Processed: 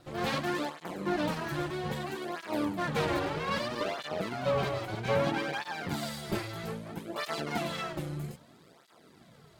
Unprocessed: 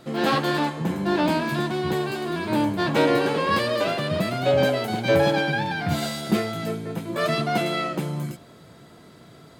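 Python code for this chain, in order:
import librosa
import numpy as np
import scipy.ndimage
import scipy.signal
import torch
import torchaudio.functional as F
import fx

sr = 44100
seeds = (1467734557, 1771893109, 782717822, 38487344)

y = fx.high_shelf(x, sr, hz=6600.0, db=-10.0, at=(3.19, 5.54))
y = np.maximum(y, 0.0)
y = fx.flanger_cancel(y, sr, hz=0.62, depth_ms=4.7)
y = F.gain(torch.from_numpy(y), -2.0).numpy()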